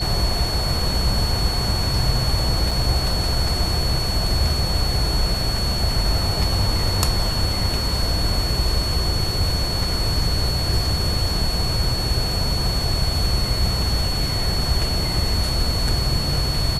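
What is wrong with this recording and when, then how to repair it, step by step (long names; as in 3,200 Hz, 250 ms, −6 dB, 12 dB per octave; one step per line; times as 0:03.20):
whistle 4,400 Hz −25 dBFS
0:02.71: drop-out 4 ms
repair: notch filter 4,400 Hz, Q 30
repair the gap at 0:02.71, 4 ms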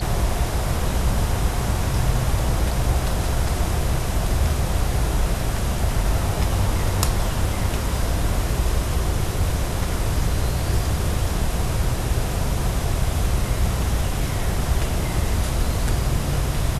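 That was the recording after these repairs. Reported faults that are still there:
none of them is left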